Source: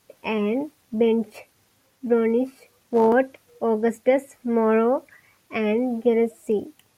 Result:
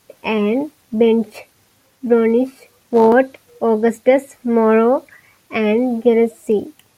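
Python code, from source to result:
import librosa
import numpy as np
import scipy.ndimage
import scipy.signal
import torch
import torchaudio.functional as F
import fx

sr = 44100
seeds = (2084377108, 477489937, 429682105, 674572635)

y = fx.dynamic_eq(x, sr, hz=4000.0, q=5.2, threshold_db=-60.0, ratio=4.0, max_db=7)
y = F.gain(torch.from_numpy(y), 6.5).numpy()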